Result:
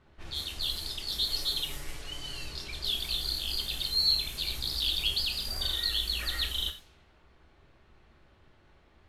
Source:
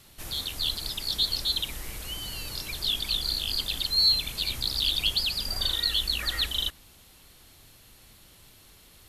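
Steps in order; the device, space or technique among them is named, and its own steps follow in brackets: 1.28–2.45 s: comb 7 ms, depth 66%; cassette deck with a dynamic noise filter (white noise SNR 26 dB; level-controlled noise filter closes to 1.4 kHz, open at -27 dBFS); gated-style reverb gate 140 ms falling, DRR 4 dB; trim -5 dB

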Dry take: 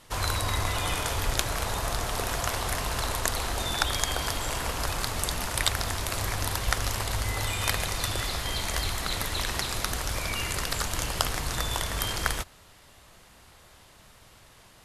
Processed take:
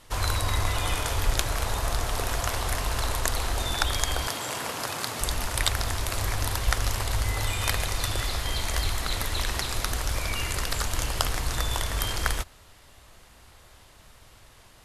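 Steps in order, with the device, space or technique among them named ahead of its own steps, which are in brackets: low shelf boost with a cut just above (bass shelf 79 Hz +6.5 dB; peaking EQ 170 Hz -4 dB 0.57 oct); 4.27–5.21 s: high-pass 130 Hz 24 dB/octave

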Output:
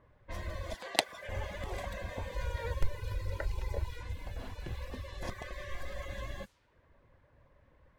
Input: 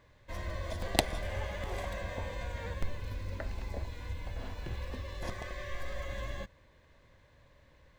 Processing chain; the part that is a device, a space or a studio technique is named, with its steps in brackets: 0.74–1.29 s: frequency weighting A; reverb removal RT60 0.68 s; cassette deck with a dynamic noise filter (white noise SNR 28 dB; level-controlled noise filter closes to 1.2 kHz, open at -37 dBFS); 2.34–4.03 s: comb 2.1 ms, depth 90%

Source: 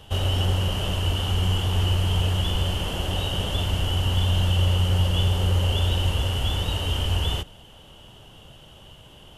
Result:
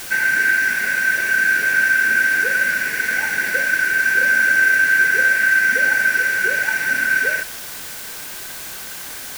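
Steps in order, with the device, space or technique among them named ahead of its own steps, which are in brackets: split-band scrambled radio (four frequency bands reordered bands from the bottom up 3142; band-pass 360–3300 Hz; white noise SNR 14 dB); trim +5.5 dB

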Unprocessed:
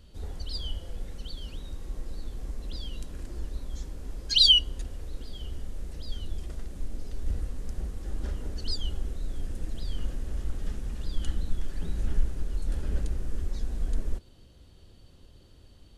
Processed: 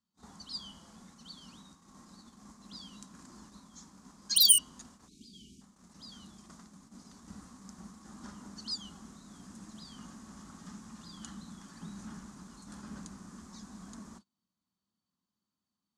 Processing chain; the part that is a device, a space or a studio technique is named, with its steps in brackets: walkie-talkie (band-pass 430–2900 Hz; hard clipper -21.5 dBFS, distortion -12 dB; gate -55 dBFS, range -24 dB); spectral selection erased 5.08–5.61 s, 450–2200 Hz; FFT filter 140 Hz 0 dB, 200 Hz +10 dB, 330 Hz -12 dB, 490 Hz -23 dB, 1.1 kHz -1 dB, 1.6 kHz -11 dB, 2.8 kHz -15 dB, 6.7 kHz +12 dB; trim +6.5 dB

